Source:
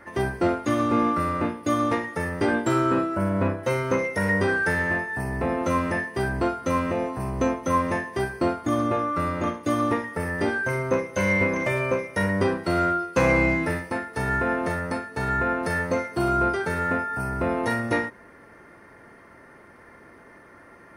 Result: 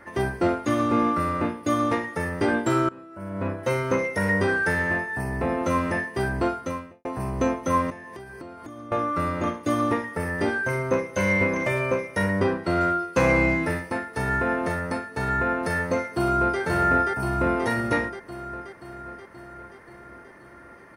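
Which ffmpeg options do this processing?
-filter_complex "[0:a]asettb=1/sr,asplit=3[a][b][c];[a]atrim=end=7.904[d];[b]atrim=start=7.9:end=8.92,asetpts=PTS-STARTPTS,afade=t=in:d=0.004:c=qsin,afade=t=out:st=1.016:d=0.004:c=qsin,acompressor=threshold=-36dB:ratio=16:attack=3.2:release=140:knee=1:detection=peak[e];[c]atrim=start=8.916[f];[d][e]acrossfade=d=0.004:c1=hsin:c2=qsin[g];[g][f]acrossfade=d=0.004:c1=qsin:c2=hsin,asettb=1/sr,asplit=3[h][i][j];[h]atrim=end=12.404[k];[i]atrim=start=12.4:end=12.81,asetpts=PTS-STARTPTS,afade=t=in:d=0.004:c=qsin,afade=t=out:st=0.406:d=0.004:c=qsin,highshelf=f=6.3k:g=-10[l];[j]atrim=start=12.806[m];[k][l]acrossfade=d=0.004:c1=hsin:c2=qsin[n];[n][m]acrossfade=d=0.004:c1=qsin:c2=hsin,asplit=2[o][p];[p]afade=t=in:st=16.02:d=0.01,afade=t=out:st=16.6:d=0.01,aecho=0:1:530|1060|1590|2120|2650|3180|3710|4240|4770|5300|5830:0.749894|0.487431|0.31683|0.20594|0.133861|0.0870095|0.0565562|0.0367615|0.023895|0.0155317|0.0100956[q];[o][q]amix=inputs=2:normalize=0,asplit=3[r][s][t];[r]atrim=end=2.89,asetpts=PTS-STARTPTS,afade=t=out:st=2.886:d=0.004:c=hsin:silence=0.0749894[u];[s]atrim=start=2.89:end=7.05,asetpts=PTS-STARTPTS,afade=t=in:d=0.75:c=qua:silence=0.0749894,afade=t=out:st=3.68:d=0.48:c=qua[v];[t]atrim=start=7.05,asetpts=PTS-STARTPTS,afade=t=in:d=0.004:c=hsin[w];[u][v][w]concat=n=3:v=0:a=1"

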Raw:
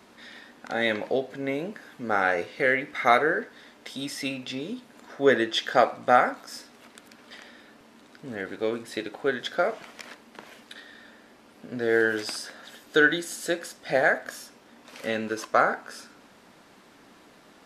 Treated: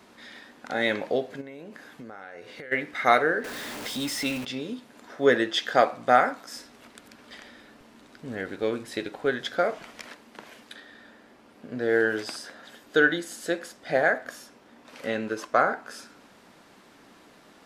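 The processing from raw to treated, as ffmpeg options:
-filter_complex "[0:a]asplit=3[a][b][c];[a]afade=t=out:st=1.4:d=0.02[d];[b]acompressor=threshold=-37dB:ratio=16:attack=3.2:release=140:knee=1:detection=peak,afade=t=in:st=1.4:d=0.02,afade=t=out:st=2.71:d=0.02[e];[c]afade=t=in:st=2.71:d=0.02[f];[d][e][f]amix=inputs=3:normalize=0,asettb=1/sr,asplit=3[g][h][i];[g]atrim=end=3.444[j];[h]atrim=start=3.44:end=4.45,asetpts=PTS-STARTPTS,afade=t=in:d=0.004:c=qsin,afade=t=out:st=1.006:d=0.004:c=qsin,aeval=exprs='val(0)+0.5*0.0251*sgn(val(0))':c=same[k];[i]atrim=start=4.446[l];[j][k]acrossfade=d=0.004:c1=hsin:c2=qsin[m];[m][l]acrossfade=d=0.004:c1=qsin:c2=hsin,asettb=1/sr,asplit=3[n][o][p];[n]atrim=end=6.584[q];[o]atrim=start=6.58:end=10.06,asetpts=PTS-STARTPTS,afade=t=in:d=0.004:c=qsin,afade=t=out:st=3.476:d=0.004:c=qsin,lowshelf=f=79:g=11[r];[p]atrim=start=10.056[s];[q][r]acrossfade=d=0.004:c1=hsin:c2=qsin[t];[t][s]acrossfade=d=0.004:c1=qsin:c2=hsin,asettb=1/sr,asplit=3[u][v][w];[u]atrim=end=10.764[x];[v]atrim=start=10.76:end=15.86,asetpts=PTS-STARTPTS,afade=t=in:d=0.004:c=qsin,afade=t=out:st=5.096:d=0.004:c=qsin,highshelf=f=2.9k:g=-5[y];[w]atrim=start=15.856[z];[x][y]acrossfade=d=0.004:c1=hsin:c2=qsin[aa];[aa][z]acrossfade=d=0.004:c1=qsin:c2=hsin"

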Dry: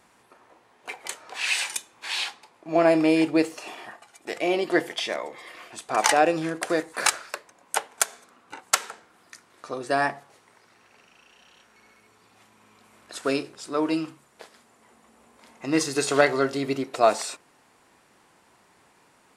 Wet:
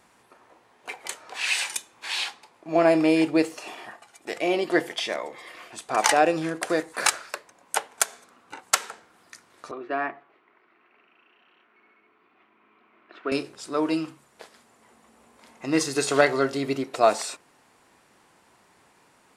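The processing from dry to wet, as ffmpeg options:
-filter_complex "[0:a]asettb=1/sr,asplit=3[a][b][c];[a]atrim=end=9.714[d];[b]atrim=start=9.71:end=13.32,asetpts=PTS-STARTPTS,afade=t=in:d=0.004:c=qsin,afade=t=out:st=3.606:d=0.004:c=qsin,highpass=330,equalizer=f=340:t=q:w=4:g=5,equalizer=f=520:t=q:w=4:g=-10,equalizer=f=850:t=q:w=4:g=-8,equalizer=f=1.7k:t=q:w=4:g=-5,lowpass=f=2.5k:w=0.5412,lowpass=f=2.5k:w=1.3066[e];[c]atrim=start=13.316[f];[d][e]acrossfade=d=0.004:c1=hsin:c2=qsin[g];[g][f]acrossfade=d=0.004:c1=qsin:c2=hsin"

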